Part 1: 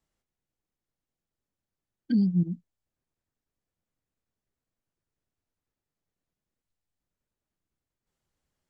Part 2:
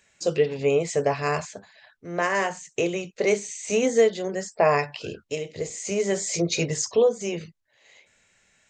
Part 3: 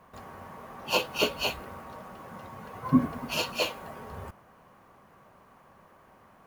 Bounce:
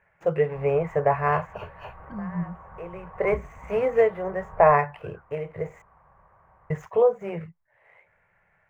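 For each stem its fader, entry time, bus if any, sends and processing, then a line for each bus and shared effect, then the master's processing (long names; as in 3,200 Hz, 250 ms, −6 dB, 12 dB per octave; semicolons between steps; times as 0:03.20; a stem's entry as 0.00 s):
−3.5 dB, 0.00 s, no send, no processing
+2.5 dB, 0.00 s, muted 0:05.82–0:06.70, no send, running median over 9 samples; automatic ducking −22 dB, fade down 0.20 s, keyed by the first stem
−3.0 dB, 0.40 s, no send, sub-octave generator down 2 octaves, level +3 dB; downward compressor 2.5 to 1, threshold −33 dBFS, peak gain reduction 14 dB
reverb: not used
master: drawn EQ curve 170 Hz 0 dB, 240 Hz −16 dB, 490 Hz −2 dB, 900 Hz +4 dB, 2,100 Hz −2 dB, 3,900 Hz −26 dB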